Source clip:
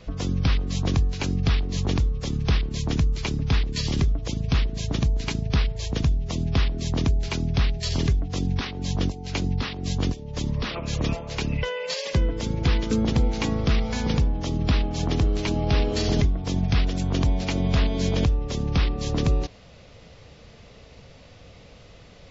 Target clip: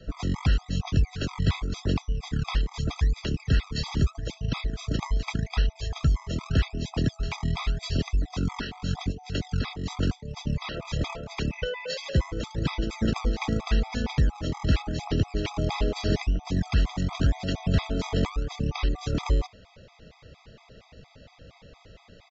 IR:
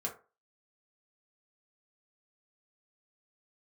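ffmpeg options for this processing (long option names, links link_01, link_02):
-filter_complex "[0:a]equalizer=frequency=6100:width=2.1:gain=-5,acrossover=split=220|880|2400[link_01][link_02][link_03][link_04];[link_01]acrusher=samples=29:mix=1:aa=0.000001:lfo=1:lforange=29:lforate=0.84[link_05];[link_05][link_02][link_03][link_04]amix=inputs=4:normalize=0,aresample=16000,aresample=44100,afftfilt=real='re*gt(sin(2*PI*4.3*pts/sr)*(1-2*mod(floor(b*sr/1024/650),2)),0)':imag='im*gt(sin(2*PI*4.3*pts/sr)*(1-2*mod(floor(b*sr/1024/650),2)),0)':win_size=1024:overlap=0.75"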